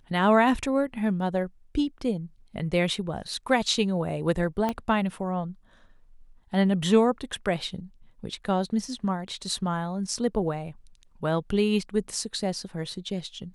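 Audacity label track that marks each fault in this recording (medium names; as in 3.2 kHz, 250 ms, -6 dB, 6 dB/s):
4.690000	4.690000	pop -15 dBFS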